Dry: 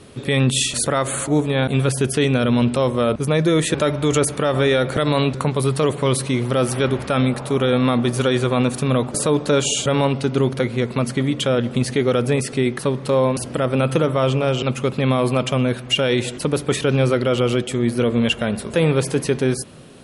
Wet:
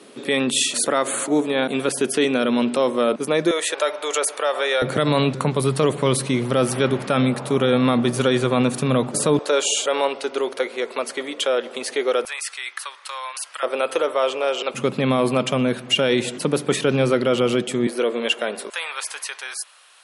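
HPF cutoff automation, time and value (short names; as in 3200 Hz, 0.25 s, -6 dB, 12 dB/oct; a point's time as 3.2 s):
HPF 24 dB/oct
230 Hz
from 3.51 s 510 Hz
from 4.82 s 130 Hz
from 9.39 s 400 Hz
from 12.25 s 1100 Hz
from 13.63 s 420 Hz
from 14.74 s 150 Hz
from 17.87 s 330 Hz
from 18.7 s 950 Hz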